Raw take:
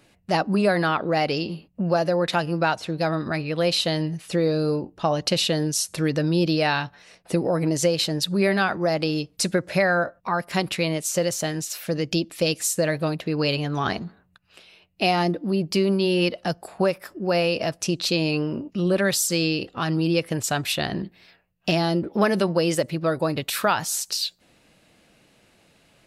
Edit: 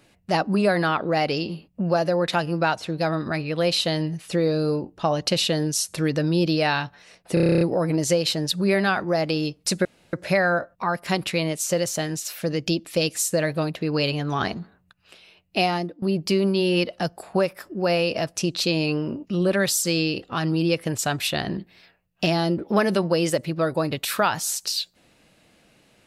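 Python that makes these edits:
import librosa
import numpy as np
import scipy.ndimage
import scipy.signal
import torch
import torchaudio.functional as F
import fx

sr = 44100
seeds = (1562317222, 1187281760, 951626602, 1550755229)

y = fx.edit(x, sr, fx.stutter(start_s=7.34, slice_s=0.03, count=10),
    fx.insert_room_tone(at_s=9.58, length_s=0.28),
    fx.fade_out_to(start_s=15.06, length_s=0.41, floor_db=-19.0), tone=tone)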